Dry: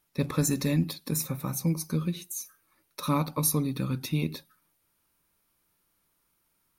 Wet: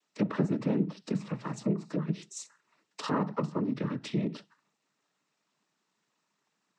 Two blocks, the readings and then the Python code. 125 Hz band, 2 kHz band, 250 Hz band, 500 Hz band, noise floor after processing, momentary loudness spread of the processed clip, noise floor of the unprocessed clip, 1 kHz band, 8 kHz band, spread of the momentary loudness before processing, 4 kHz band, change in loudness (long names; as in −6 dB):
−5.5 dB, −3.0 dB, −1.0 dB, +1.0 dB, −81 dBFS, 14 LU, −74 dBFS, −1.5 dB, −15.5 dB, 11 LU, −7.5 dB, −3.0 dB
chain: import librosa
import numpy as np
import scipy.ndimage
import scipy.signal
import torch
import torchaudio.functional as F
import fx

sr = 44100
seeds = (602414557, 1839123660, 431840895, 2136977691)

y = fx.env_lowpass_down(x, sr, base_hz=1300.0, full_db=-23.5)
y = fx.noise_vocoder(y, sr, seeds[0], bands=12)
y = scipy.signal.sosfilt(scipy.signal.butter(4, 160.0, 'highpass', fs=sr, output='sos'), y)